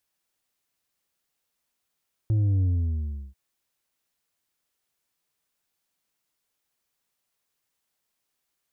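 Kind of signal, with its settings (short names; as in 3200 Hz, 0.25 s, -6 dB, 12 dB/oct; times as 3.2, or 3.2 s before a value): sub drop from 110 Hz, over 1.04 s, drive 5 dB, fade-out 0.72 s, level -20 dB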